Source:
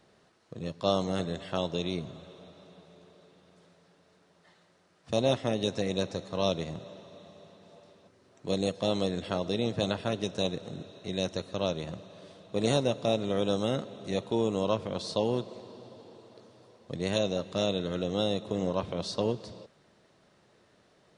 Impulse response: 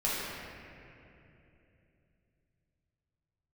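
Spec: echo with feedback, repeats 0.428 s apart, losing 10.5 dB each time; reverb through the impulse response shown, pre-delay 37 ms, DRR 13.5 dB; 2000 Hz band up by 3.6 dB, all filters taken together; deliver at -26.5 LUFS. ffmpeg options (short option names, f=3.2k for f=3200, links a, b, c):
-filter_complex "[0:a]equalizer=f=2k:t=o:g=5,aecho=1:1:428|856|1284:0.299|0.0896|0.0269,asplit=2[a][b];[1:a]atrim=start_sample=2205,adelay=37[c];[b][c]afir=irnorm=-1:irlink=0,volume=-23dB[d];[a][d]amix=inputs=2:normalize=0,volume=4dB"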